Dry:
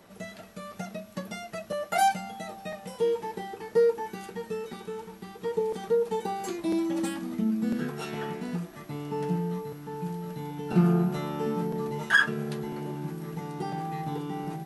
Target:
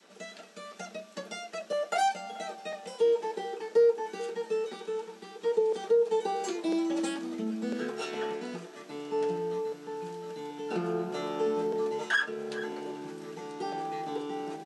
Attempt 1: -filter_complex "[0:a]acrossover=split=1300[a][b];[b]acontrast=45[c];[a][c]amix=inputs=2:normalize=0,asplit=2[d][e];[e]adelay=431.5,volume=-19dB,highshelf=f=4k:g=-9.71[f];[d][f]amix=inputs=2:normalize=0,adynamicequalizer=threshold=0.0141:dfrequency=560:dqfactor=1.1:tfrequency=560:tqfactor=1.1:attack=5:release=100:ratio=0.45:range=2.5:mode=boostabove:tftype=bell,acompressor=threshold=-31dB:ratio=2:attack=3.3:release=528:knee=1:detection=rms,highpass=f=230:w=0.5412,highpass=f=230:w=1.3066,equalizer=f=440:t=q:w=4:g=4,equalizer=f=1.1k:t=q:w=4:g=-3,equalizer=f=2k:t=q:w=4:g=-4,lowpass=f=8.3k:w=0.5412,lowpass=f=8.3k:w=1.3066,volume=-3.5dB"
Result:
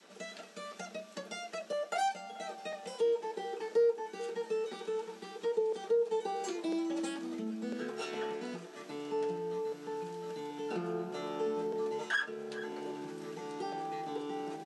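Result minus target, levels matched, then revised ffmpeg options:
compressor: peak gain reduction +5.5 dB
-filter_complex "[0:a]acrossover=split=1300[a][b];[b]acontrast=45[c];[a][c]amix=inputs=2:normalize=0,asplit=2[d][e];[e]adelay=431.5,volume=-19dB,highshelf=f=4k:g=-9.71[f];[d][f]amix=inputs=2:normalize=0,adynamicequalizer=threshold=0.0141:dfrequency=560:dqfactor=1.1:tfrequency=560:tqfactor=1.1:attack=5:release=100:ratio=0.45:range=2.5:mode=boostabove:tftype=bell,acompressor=threshold=-20.5dB:ratio=2:attack=3.3:release=528:knee=1:detection=rms,highpass=f=230:w=0.5412,highpass=f=230:w=1.3066,equalizer=f=440:t=q:w=4:g=4,equalizer=f=1.1k:t=q:w=4:g=-3,equalizer=f=2k:t=q:w=4:g=-4,lowpass=f=8.3k:w=0.5412,lowpass=f=8.3k:w=1.3066,volume=-3.5dB"

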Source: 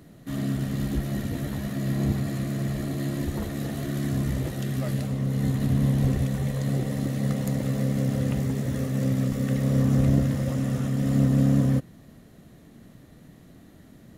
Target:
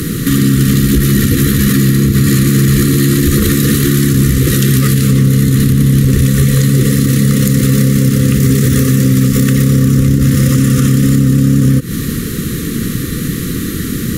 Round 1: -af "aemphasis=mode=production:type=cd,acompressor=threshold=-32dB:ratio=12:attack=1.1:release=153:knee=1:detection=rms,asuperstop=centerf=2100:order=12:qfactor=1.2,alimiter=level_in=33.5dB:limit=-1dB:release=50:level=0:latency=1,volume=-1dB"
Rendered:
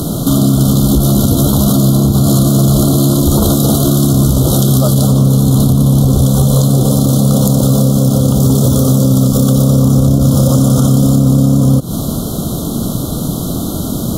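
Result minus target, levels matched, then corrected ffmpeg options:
2000 Hz band -19.5 dB
-af "aemphasis=mode=production:type=cd,acompressor=threshold=-32dB:ratio=12:attack=1.1:release=153:knee=1:detection=rms,asuperstop=centerf=750:order=12:qfactor=1.2,alimiter=level_in=33.5dB:limit=-1dB:release=50:level=0:latency=1,volume=-1dB"

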